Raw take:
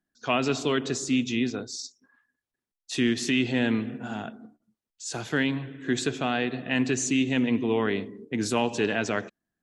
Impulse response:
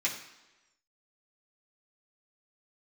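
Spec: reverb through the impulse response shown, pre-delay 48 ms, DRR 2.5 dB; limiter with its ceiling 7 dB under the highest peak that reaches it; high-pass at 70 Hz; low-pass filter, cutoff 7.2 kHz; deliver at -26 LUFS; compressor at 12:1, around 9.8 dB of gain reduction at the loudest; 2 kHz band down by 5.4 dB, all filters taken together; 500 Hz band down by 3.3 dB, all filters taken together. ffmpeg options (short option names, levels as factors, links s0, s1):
-filter_complex "[0:a]highpass=70,lowpass=7200,equalizer=f=500:t=o:g=-4,equalizer=f=2000:t=o:g=-7,acompressor=threshold=0.0282:ratio=12,alimiter=level_in=1.5:limit=0.0631:level=0:latency=1,volume=0.668,asplit=2[s0][s1];[1:a]atrim=start_sample=2205,adelay=48[s2];[s1][s2]afir=irnorm=-1:irlink=0,volume=0.335[s3];[s0][s3]amix=inputs=2:normalize=0,volume=3.35"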